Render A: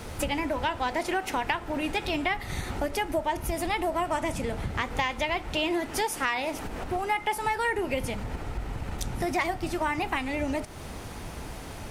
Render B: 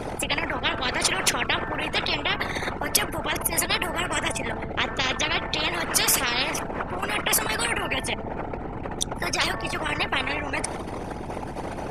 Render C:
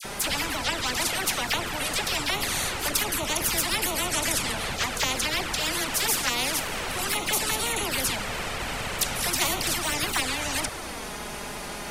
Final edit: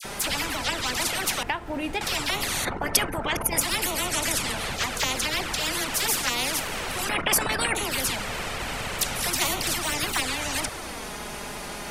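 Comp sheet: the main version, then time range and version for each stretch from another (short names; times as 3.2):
C
1.43–2.01 from A
2.65–3.61 from B
7.09–7.75 from B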